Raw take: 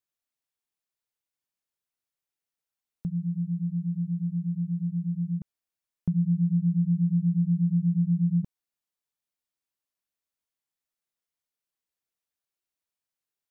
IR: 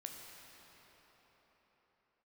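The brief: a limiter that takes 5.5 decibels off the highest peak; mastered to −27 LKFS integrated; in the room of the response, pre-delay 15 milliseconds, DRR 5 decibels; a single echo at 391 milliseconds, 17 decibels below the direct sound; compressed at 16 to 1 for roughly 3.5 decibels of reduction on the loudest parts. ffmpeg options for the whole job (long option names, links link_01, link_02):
-filter_complex "[0:a]acompressor=threshold=-23dB:ratio=16,alimiter=limit=-23.5dB:level=0:latency=1,aecho=1:1:391:0.141,asplit=2[link_01][link_02];[1:a]atrim=start_sample=2205,adelay=15[link_03];[link_02][link_03]afir=irnorm=-1:irlink=0,volume=-2dB[link_04];[link_01][link_04]amix=inputs=2:normalize=0,volume=6dB"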